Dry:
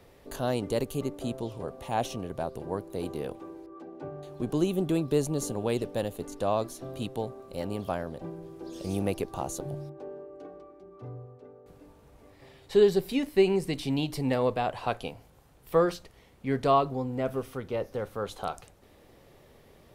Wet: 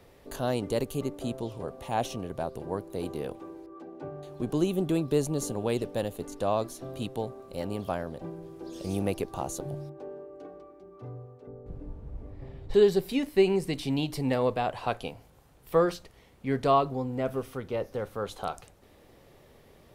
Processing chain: 11.47–12.74 tilt -4.5 dB/oct

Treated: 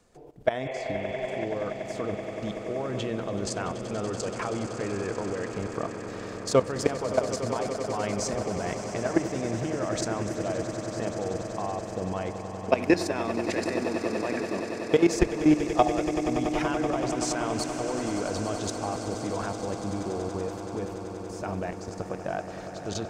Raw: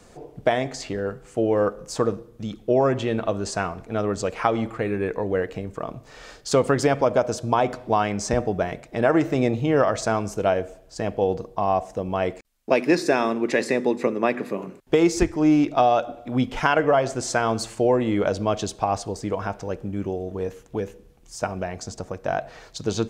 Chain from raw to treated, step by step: level quantiser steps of 16 dB; spectral repair 0.67–1.42, 380–3500 Hz before; swelling echo 95 ms, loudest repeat 8, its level -14 dB

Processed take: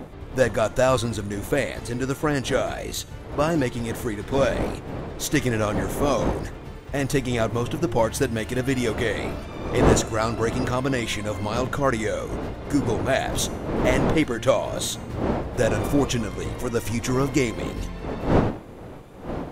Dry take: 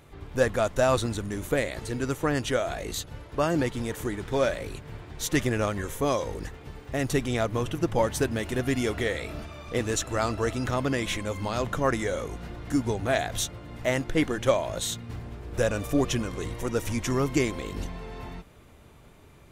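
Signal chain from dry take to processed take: wind noise 490 Hz -33 dBFS; de-hum 351.1 Hz, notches 39; gain +3 dB

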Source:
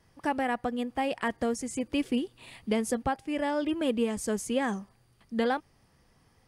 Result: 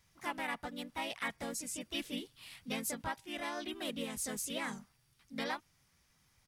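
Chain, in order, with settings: harmoniser -5 st -10 dB, +3 st -1 dB; passive tone stack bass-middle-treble 5-5-5; gain +3 dB

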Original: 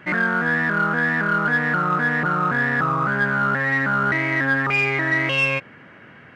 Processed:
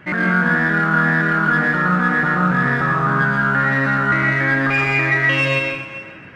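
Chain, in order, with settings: low shelf 120 Hz +8.5 dB; tape echo 0.405 s, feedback 32%, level -14 dB, low-pass 3500 Hz; plate-style reverb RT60 0.69 s, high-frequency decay 1×, pre-delay 0.1 s, DRR 0.5 dB

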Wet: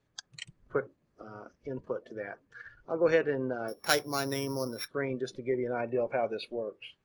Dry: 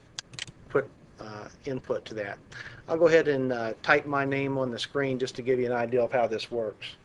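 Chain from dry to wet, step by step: 3.68–4.88 sample sorter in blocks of 8 samples; spectral noise reduction 15 dB; gain -5 dB

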